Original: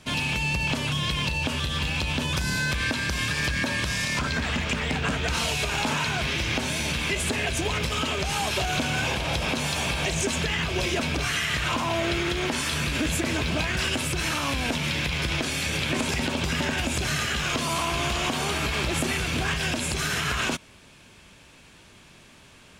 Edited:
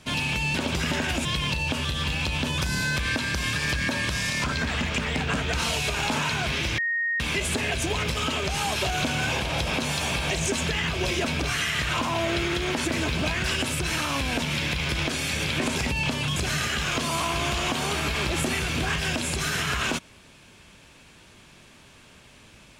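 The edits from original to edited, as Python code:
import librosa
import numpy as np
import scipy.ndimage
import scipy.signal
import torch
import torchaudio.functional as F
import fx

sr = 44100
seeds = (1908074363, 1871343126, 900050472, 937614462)

y = fx.edit(x, sr, fx.swap(start_s=0.55, length_s=0.45, other_s=16.24, other_length_s=0.7),
    fx.bleep(start_s=6.53, length_s=0.42, hz=1860.0, db=-23.0),
    fx.cut(start_s=12.6, length_s=0.58), tone=tone)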